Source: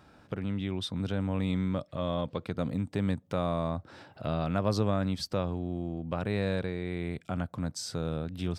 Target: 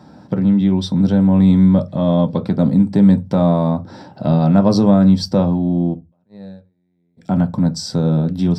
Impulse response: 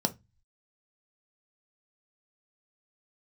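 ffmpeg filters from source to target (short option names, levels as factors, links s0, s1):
-filter_complex "[0:a]asplit=3[s0][s1][s2];[s0]afade=t=out:st=5.93:d=0.02[s3];[s1]agate=range=0.00447:threshold=0.0631:ratio=16:detection=peak,afade=t=in:st=5.93:d=0.02,afade=t=out:st=7.17:d=0.02[s4];[s2]afade=t=in:st=7.17:d=0.02[s5];[s3][s4][s5]amix=inputs=3:normalize=0[s6];[1:a]atrim=start_sample=2205,afade=t=out:st=0.23:d=0.01,atrim=end_sample=10584[s7];[s6][s7]afir=irnorm=-1:irlink=0,volume=1.33"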